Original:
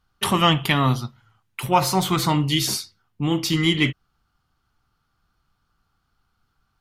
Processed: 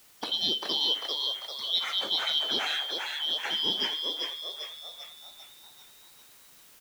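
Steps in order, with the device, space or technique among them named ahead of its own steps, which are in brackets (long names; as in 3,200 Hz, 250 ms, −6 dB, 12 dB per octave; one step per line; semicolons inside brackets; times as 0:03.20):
split-band scrambled radio (band-splitting scrambler in four parts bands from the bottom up 3412; band-pass filter 370–3,000 Hz; white noise bed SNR 23 dB)
echo with shifted repeats 395 ms, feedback 52%, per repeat +100 Hz, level −3.5 dB
level −6 dB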